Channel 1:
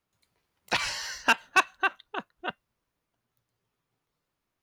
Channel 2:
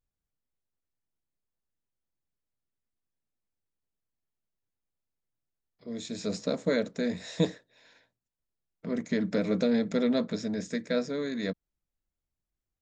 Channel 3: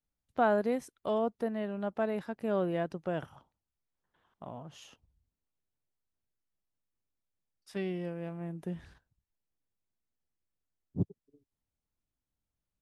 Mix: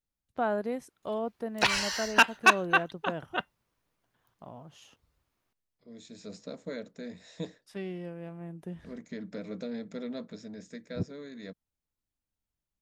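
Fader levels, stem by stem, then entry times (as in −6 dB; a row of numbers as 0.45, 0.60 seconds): +2.0, −11.5, −2.5 decibels; 0.90, 0.00, 0.00 seconds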